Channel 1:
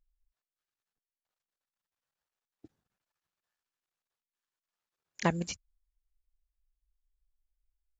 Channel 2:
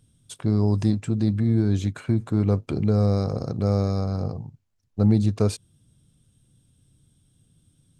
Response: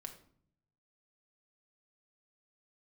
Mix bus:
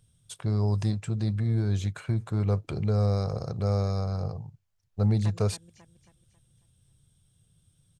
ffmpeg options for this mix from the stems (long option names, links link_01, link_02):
-filter_complex "[0:a]equalizer=frequency=270:width_type=o:width=0.82:gain=14,volume=-4dB,asplit=2[link_01][link_02];[link_02]volume=-18.5dB[link_03];[1:a]volume=-2dB,asplit=2[link_04][link_05];[link_05]apad=whole_len=352527[link_06];[link_01][link_06]sidechaincompress=threshold=-26dB:ratio=8:attack=16:release=1360[link_07];[link_03]aecho=0:1:272|544|816|1088|1360|1632:1|0.41|0.168|0.0689|0.0283|0.0116[link_08];[link_07][link_04][link_08]amix=inputs=3:normalize=0,equalizer=frequency=270:width=1.9:gain=-13"